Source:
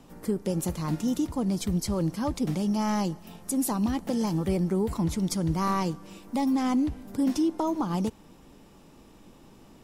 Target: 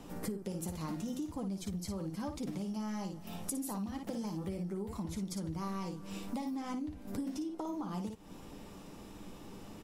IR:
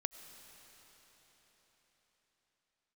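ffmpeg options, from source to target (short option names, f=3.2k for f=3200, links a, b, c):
-filter_complex "[0:a]aecho=1:1:10|56:0.398|0.501,acompressor=threshold=-37dB:ratio=16[a];[1:a]atrim=start_sample=2205,atrim=end_sample=3969[b];[a][b]afir=irnorm=-1:irlink=0,volume=3dB"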